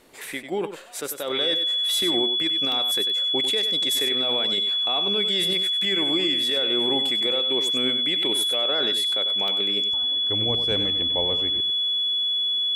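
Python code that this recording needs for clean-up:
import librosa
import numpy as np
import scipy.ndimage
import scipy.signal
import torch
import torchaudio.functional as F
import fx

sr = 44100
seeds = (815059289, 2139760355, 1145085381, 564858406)

y = fx.notch(x, sr, hz=3400.0, q=30.0)
y = fx.fix_interpolate(y, sr, at_s=(2.72, 9.48), length_ms=1.1)
y = fx.fix_echo_inverse(y, sr, delay_ms=96, level_db=-9.5)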